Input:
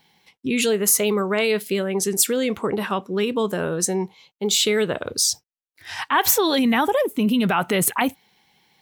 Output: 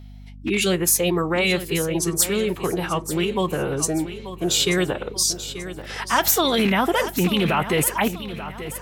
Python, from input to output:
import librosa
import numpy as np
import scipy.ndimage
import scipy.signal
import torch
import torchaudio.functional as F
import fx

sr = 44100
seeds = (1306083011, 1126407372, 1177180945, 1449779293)

p1 = fx.rattle_buzz(x, sr, strikes_db=-24.0, level_db=-19.0)
p2 = fx.pitch_keep_formants(p1, sr, semitones=-3.0)
p3 = p2 + fx.echo_feedback(p2, sr, ms=885, feedback_pct=43, wet_db=-12.5, dry=0)
y = fx.add_hum(p3, sr, base_hz=50, snr_db=18)